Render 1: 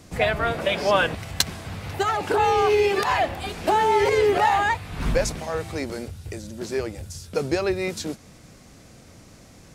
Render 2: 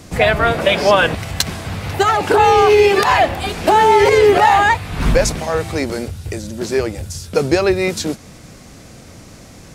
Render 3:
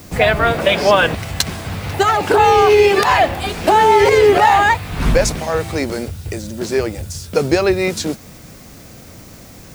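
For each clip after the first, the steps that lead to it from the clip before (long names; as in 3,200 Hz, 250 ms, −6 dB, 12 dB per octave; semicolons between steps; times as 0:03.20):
boost into a limiter +10 dB; level −1 dB
background noise violet −47 dBFS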